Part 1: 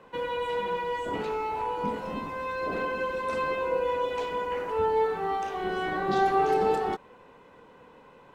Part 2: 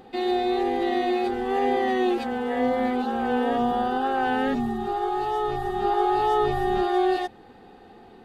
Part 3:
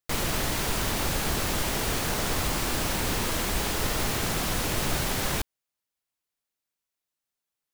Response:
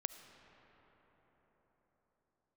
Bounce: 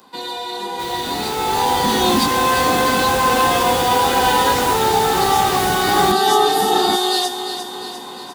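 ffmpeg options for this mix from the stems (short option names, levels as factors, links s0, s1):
-filter_complex "[0:a]alimiter=level_in=1.19:limit=0.0631:level=0:latency=1,volume=0.841,equalizer=f=125:t=o:w=1:g=-6,equalizer=f=250:t=o:w=1:g=10,equalizer=f=500:t=o:w=1:g=-6,equalizer=f=1000:t=o:w=1:g=6,equalizer=f=4000:t=o:w=1:g=4,volume=1[s0];[1:a]highpass=490,flanger=delay=16:depth=4:speed=0.64,aexciter=amount=7.1:drive=7.9:freq=3500,volume=0.631,asplit=2[s1][s2];[s2]volume=0.376[s3];[2:a]adelay=700,volume=0.376[s4];[s3]aecho=0:1:351|702|1053|1404|1755|2106|2457|2808|3159:1|0.57|0.325|0.185|0.106|0.0602|0.0343|0.0195|0.0111[s5];[s0][s1][s4][s5]amix=inputs=4:normalize=0,highpass=67,dynaudnorm=f=330:g=9:m=5.01"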